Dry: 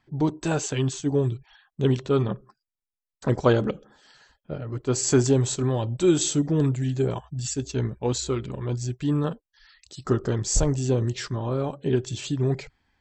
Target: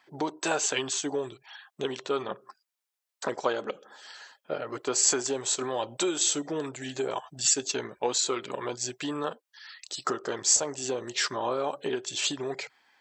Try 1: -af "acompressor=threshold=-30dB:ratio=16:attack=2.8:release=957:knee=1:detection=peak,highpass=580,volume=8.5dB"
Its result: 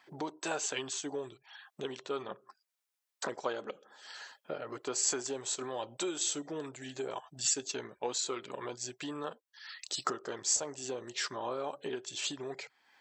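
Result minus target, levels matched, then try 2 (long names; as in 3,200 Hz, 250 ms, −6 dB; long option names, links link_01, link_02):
downward compressor: peak gain reduction +7.5 dB
-af "acompressor=threshold=-22dB:ratio=16:attack=2.8:release=957:knee=1:detection=peak,highpass=580,volume=8.5dB"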